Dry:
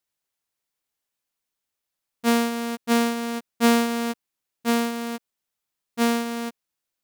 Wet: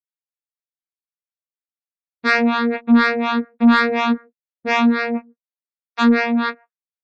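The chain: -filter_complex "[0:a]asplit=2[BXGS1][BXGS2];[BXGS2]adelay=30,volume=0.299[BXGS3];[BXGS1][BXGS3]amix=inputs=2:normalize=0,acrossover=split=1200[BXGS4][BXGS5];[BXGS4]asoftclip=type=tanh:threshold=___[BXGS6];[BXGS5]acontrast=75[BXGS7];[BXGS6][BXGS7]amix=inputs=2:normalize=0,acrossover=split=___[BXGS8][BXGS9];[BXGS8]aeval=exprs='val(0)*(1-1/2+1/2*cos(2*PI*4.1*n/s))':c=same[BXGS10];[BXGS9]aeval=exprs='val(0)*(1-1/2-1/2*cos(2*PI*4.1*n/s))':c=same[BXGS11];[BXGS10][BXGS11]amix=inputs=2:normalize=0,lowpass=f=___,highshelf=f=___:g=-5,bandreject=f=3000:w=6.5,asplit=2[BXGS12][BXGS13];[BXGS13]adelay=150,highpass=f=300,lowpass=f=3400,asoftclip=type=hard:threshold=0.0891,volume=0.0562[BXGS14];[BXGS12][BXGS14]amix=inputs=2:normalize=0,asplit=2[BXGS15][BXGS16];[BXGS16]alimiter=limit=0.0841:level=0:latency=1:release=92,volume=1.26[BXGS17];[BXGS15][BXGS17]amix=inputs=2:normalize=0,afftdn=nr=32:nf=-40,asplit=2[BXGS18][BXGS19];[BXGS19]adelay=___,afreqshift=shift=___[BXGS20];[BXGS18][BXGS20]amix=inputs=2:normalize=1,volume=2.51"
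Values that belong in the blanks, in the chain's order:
0.133, 560, 4400, 3300, 8.7, 2.6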